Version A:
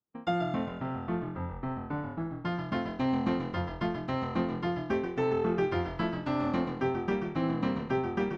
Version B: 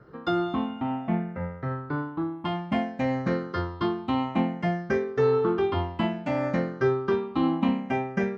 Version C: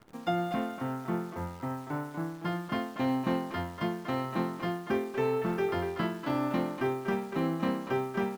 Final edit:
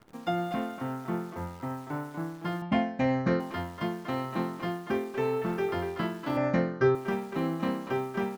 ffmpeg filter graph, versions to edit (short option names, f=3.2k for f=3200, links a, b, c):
-filter_complex "[1:a]asplit=2[a][b];[2:a]asplit=3[c][d][e];[c]atrim=end=2.622[f];[a]atrim=start=2.618:end=3.402[g];[d]atrim=start=3.398:end=6.372[h];[b]atrim=start=6.368:end=6.952[i];[e]atrim=start=6.948[j];[f][g]acrossfade=d=0.004:c1=hsin:c2=hsin[k];[k][h]acrossfade=d=0.004:c1=hsin:c2=hsin[l];[l][i]acrossfade=d=0.004:c1=hsin:c2=hsin[m];[m][j]acrossfade=d=0.004:c1=hsin:c2=hsin"